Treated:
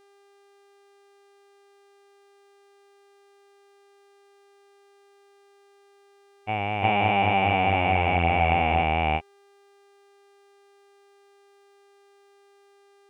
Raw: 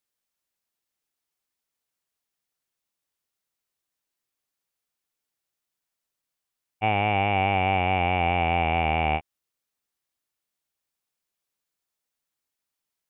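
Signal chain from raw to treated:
backwards echo 349 ms −4.5 dB
pitch vibrato 0.45 Hz 19 cents
hum with harmonics 400 Hz, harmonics 26, −58 dBFS −7 dB per octave

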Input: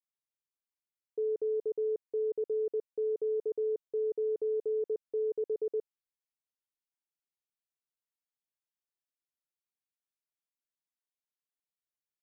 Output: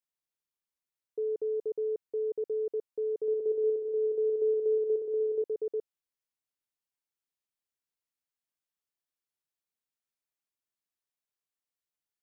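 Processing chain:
0:03.10–0:05.42: bouncing-ball delay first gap 180 ms, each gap 0.7×, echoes 5

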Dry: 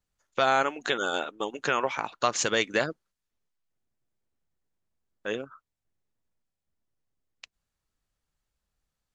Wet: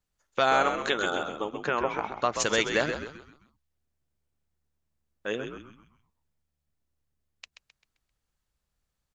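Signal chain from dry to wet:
0:01.10–0:02.40: low-pass filter 1,700 Hz 6 dB per octave
on a send: echo with shifted repeats 131 ms, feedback 40%, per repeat −73 Hz, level −7.5 dB

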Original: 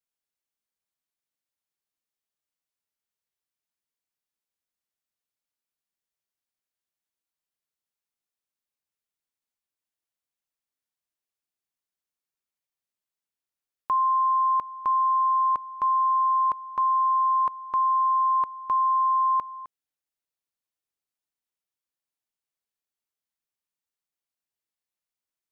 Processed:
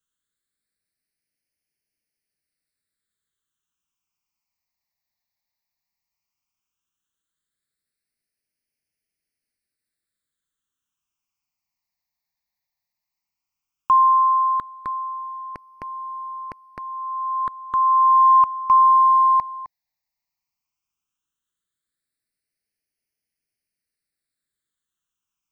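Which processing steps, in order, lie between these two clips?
all-pass phaser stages 8, 0.14 Hz, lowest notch 410–1,100 Hz
level +8.5 dB

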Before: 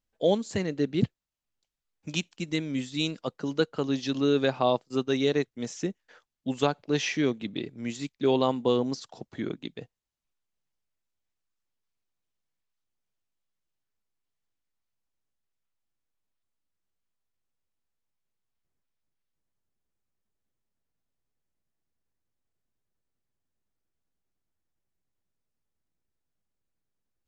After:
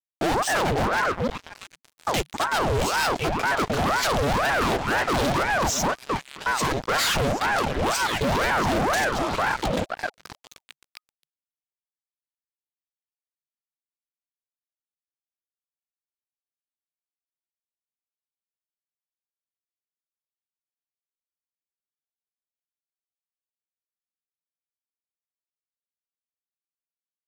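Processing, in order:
in parallel at −2 dB: compressor whose output falls as the input rises −31 dBFS, ratio −1
on the sum: echo through a band-pass that steps 263 ms, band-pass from 490 Hz, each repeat 0.7 octaves, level −3 dB
fuzz pedal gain 35 dB, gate −44 dBFS
ring modulator whose carrier an LFO sweeps 700 Hz, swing 80%, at 2 Hz
level −5 dB

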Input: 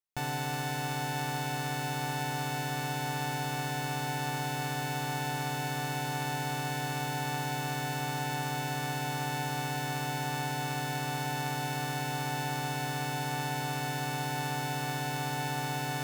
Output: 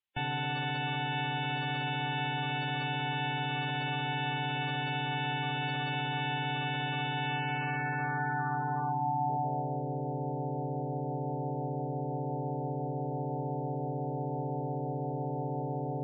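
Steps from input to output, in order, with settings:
low-pass filter sweep 3,100 Hz → 530 Hz, 0:07.22–0:09.87
gate on every frequency bin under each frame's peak −15 dB strong
coupled-rooms reverb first 0.67 s, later 1.8 s, from −17 dB, DRR 19.5 dB

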